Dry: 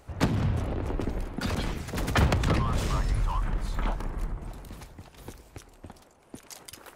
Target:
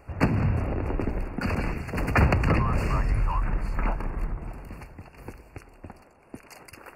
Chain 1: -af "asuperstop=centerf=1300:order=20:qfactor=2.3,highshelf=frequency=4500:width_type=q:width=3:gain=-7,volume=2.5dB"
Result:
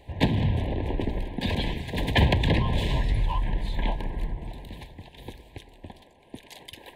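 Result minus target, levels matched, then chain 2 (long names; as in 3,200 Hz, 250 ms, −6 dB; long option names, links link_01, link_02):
4,000 Hz band +13.5 dB
-af "asuperstop=centerf=3500:order=20:qfactor=2.3,highshelf=frequency=4500:width_type=q:width=3:gain=-7,volume=2.5dB"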